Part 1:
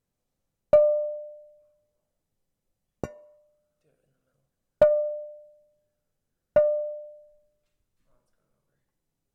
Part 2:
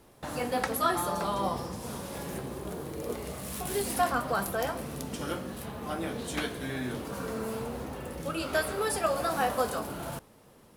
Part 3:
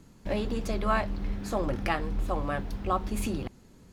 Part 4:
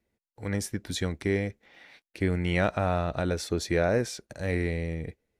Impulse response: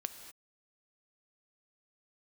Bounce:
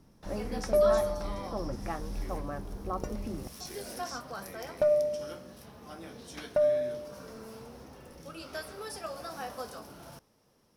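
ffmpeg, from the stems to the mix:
-filter_complex "[0:a]alimiter=limit=-17.5dB:level=0:latency=1,volume=-1dB[link_01];[1:a]equalizer=frequency=7400:width=3.6:gain=-4.5,volume=-11.5dB[link_02];[2:a]lowpass=1300,volume=-6dB[link_03];[3:a]highpass=frequency=240:width=0.5412,highpass=frequency=240:width=1.3066,alimiter=level_in=1.5dB:limit=-24dB:level=0:latency=1,volume=-1.5dB,flanger=delay=22.5:depth=5:speed=0.6,volume=-10.5dB,asplit=3[link_04][link_05][link_06];[link_04]atrim=end=2.41,asetpts=PTS-STARTPTS,afade=type=out:start_time=2.406:duration=0.004:curve=hsin[link_07];[link_05]atrim=start=2.41:end=3.6,asetpts=PTS-STARTPTS,volume=0[link_08];[link_06]atrim=start=3.6,asetpts=PTS-STARTPTS,afade=type=in:duration=0.004:curve=hsin[link_09];[link_07][link_08][link_09]concat=n=3:v=0:a=1[link_10];[link_01][link_02][link_03][link_10]amix=inputs=4:normalize=0,equalizer=frequency=5500:width=3.2:gain=12"

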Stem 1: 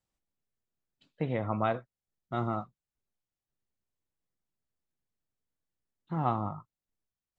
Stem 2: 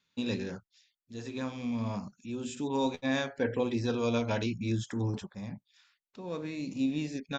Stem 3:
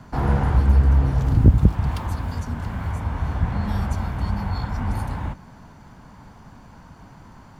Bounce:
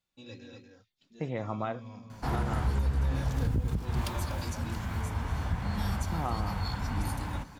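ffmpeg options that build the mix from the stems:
ffmpeg -i stem1.wav -i stem2.wav -i stem3.wav -filter_complex "[0:a]volume=-2.5dB[link_01];[1:a]asplit=2[link_02][link_03];[link_03]adelay=3,afreqshift=-0.73[link_04];[link_02][link_04]amix=inputs=2:normalize=1,volume=-9.5dB,asplit=2[link_05][link_06];[link_06]volume=-4.5dB[link_07];[2:a]highshelf=frequency=2500:gain=11.5,adelay=2100,volume=-7.5dB,asplit=2[link_08][link_09];[link_09]volume=-17dB[link_10];[link_07][link_10]amix=inputs=2:normalize=0,aecho=0:1:241:1[link_11];[link_01][link_05][link_08][link_11]amix=inputs=4:normalize=0,alimiter=limit=-20dB:level=0:latency=1:release=232" out.wav

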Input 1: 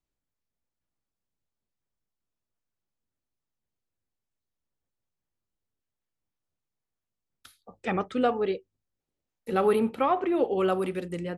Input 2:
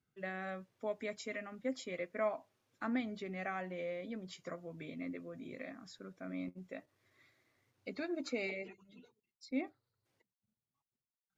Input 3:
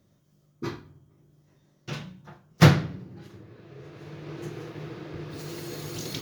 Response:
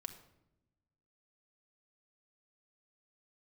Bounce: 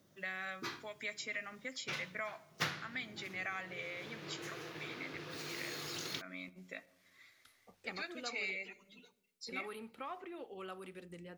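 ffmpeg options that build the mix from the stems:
-filter_complex "[0:a]volume=-14.5dB,asplit=2[link_01][link_02];[link_02]volume=-12dB[link_03];[1:a]tiltshelf=frequency=920:gain=-7.5,volume=-1dB,asplit=2[link_04][link_05];[link_05]volume=-4.5dB[link_06];[2:a]highpass=frequency=300:poles=1,volume=1dB[link_07];[3:a]atrim=start_sample=2205[link_08];[link_03][link_06]amix=inputs=2:normalize=0[link_09];[link_09][link_08]afir=irnorm=-1:irlink=0[link_10];[link_01][link_04][link_07][link_10]amix=inputs=4:normalize=0,acrossover=split=1200|2400|5800[link_11][link_12][link_13][link_14];[link_11]acompressor=threshold=-48dB:ratio=4[link_15];[link_12]acompressor=threshold=-41dB:ratio=4[link_16];[link_13]acompressor=threshold=-45dB:ratio=4[link_17];[link_14]acompressor=threshold=-54dB:ratio=4[link_18];[link_15][link_16][link_17][link_18]amix=inputs=4:normalize=0"

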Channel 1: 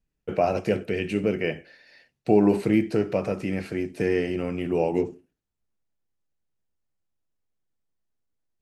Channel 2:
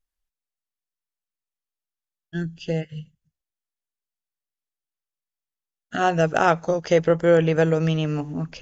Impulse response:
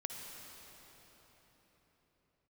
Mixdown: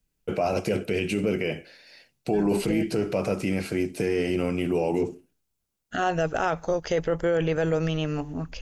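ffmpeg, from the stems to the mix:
-filter_complex "[0:a]highshelf=frequency=4800:gain=9.5,bandreject=frequency=1800:width=11,volume=2.5dB[link_01];[1:a]asubboost=boost=7:cutoff=55,volume=-1dB[link_02];[link_01][link_02]amix=inputs=2:normalize=0,alimiter=limit=-16dB:level=0:latency=1:release=12"

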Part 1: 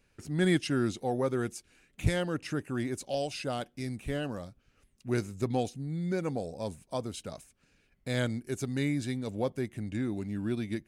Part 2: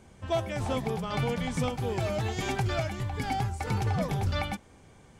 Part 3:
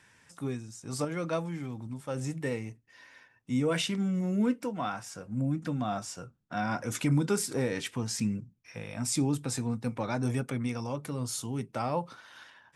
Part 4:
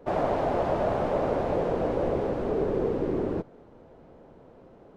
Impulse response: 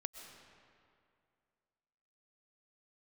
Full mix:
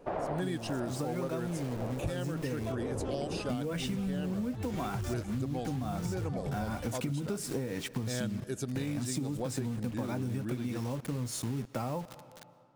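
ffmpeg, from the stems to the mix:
-filter_complex "[0:a]bandreject=frequency=2100:width=5.1,volume=-0.5dB,asplit=2[link_01][link_02];[link_02]volume=-10dB[link_03];[1:a]adelay=2350,volume=-10.5dB[link_04];[2:a]acrusher=bits=6:mix=0:aa=0.000001,volume=-2.5dB,asplit=3[link_05][link_06][link_07];[link_06]volume=-8.5dB[link_08];[3:a]equalizer=frequency=1500:width=0.31:gain=12,volume=-15.5dB[link_09];[link_07]apad=whole_len=219087[link_10];[link_09][link_10]sidechaincompress=threshold=-44dB:ratio=8:attack=16:release=253[link_11];[link_04][link_05][link_11]amix=inputs=3:normalize=0,lowshelf=frequency=500:gain=10,acompressor=threshold=-24dB:ratio=6,volume=0dB[link_12];[4:a]atrim=start_sample=2205[link_13];[link_03][link_08]amix=inputs=2:normalize=0[link_14];[link_14][link_13]afir=irnorm=-1:irlink=0[link_15];[link_01][link_12][link_15]amix=inputs=3:normalize=0,acompressor=threshold=-31dB:ratio=6"

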